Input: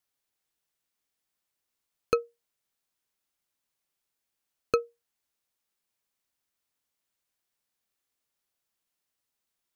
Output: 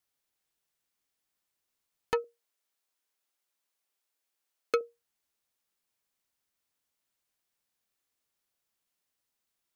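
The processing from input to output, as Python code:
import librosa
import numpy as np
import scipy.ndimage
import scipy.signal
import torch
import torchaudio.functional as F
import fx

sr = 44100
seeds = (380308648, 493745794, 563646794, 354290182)

y = fx.highpass(x, sr, hz=330.0, slope=12, at=(2.24, 4.81))
y = fx.transformer_sat(y, sr, knee_hz=990.0)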